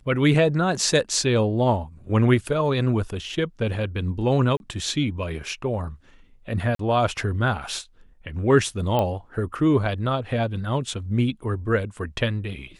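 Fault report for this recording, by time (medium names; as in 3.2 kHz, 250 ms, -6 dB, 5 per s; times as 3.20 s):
4.57–4.60 s: dropout 31 ms
6.75–6.79 s: dropout 43 ms
8.99 s: pop -11 dBFS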